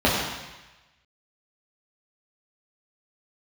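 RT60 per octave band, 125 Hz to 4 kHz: 1.1 s, 0.95 s, 1.0 s, 1.1 s, 1.2 s, 1.2 s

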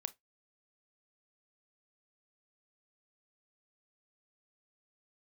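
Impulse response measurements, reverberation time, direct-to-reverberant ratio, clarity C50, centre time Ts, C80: 0.15 s, 13.0 dB, 23.0 dB, 3 ms, 34.5 dB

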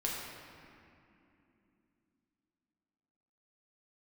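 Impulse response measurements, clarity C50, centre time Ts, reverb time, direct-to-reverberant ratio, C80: 0.0 dB, 114 ms, 2.8 s, -4.5 dB, 1.5 dB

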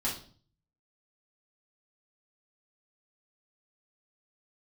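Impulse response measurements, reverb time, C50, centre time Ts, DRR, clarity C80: 0.45 s, 7.0 dB, 28 ms, -7.5 dB, 12.0 dB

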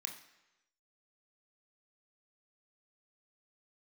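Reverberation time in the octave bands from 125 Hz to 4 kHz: 0.95 s, 0.90 s, 1.0 s, 1.0 s, 1.0 s, 0.95 s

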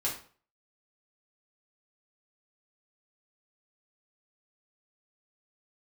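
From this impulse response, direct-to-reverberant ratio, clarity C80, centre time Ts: -6.0 dB, 12.0 dB, 28 ms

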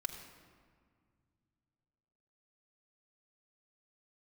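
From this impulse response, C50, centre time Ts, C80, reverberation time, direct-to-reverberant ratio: 7.0 dB, 31 ms, 8.0 dB, 1.9 s, 1.0 dB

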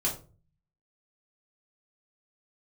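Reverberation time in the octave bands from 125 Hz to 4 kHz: 0.80 s, 0.55 s, 0.40 s, 0.30 s, 0.25 s, 0.25 s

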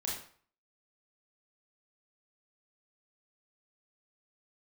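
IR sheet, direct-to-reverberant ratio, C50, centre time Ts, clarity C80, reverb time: -4.5 dB, 2.5 dB, 45 ms, 7.5 dB, 0.50 s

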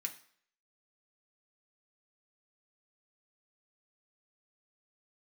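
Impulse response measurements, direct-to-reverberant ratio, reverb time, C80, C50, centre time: 2.0 dB, 0.60 s, 16.5 dB, 13.0 dB, 10 ms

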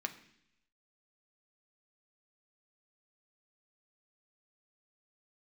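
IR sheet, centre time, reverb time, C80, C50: 8 ms, 0.70 s, 16.0 dB, 13.5 dB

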